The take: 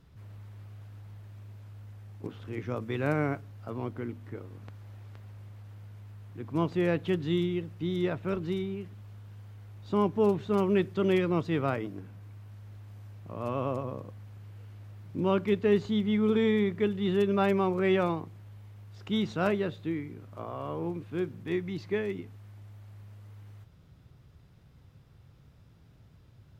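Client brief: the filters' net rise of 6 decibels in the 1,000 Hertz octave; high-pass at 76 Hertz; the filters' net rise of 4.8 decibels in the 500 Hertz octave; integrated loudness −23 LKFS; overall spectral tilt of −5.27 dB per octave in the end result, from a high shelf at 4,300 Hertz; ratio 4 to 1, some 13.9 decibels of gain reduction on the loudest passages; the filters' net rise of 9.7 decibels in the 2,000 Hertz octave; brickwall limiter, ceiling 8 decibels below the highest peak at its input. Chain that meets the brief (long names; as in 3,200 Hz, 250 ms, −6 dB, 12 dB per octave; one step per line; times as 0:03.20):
high-pass filter 76 Hz
parametric band 500 Hz +5.5 dB
parametric band 1,000 Hz +3 dB
parametric band 2,000 Hz +9 dB
high-shelf EQ 4,300 Hz +8.5 dB
downward compressor 4 to 1, threshold −33 dBFS
level +18 dB
brickwall limiter −11 dBFS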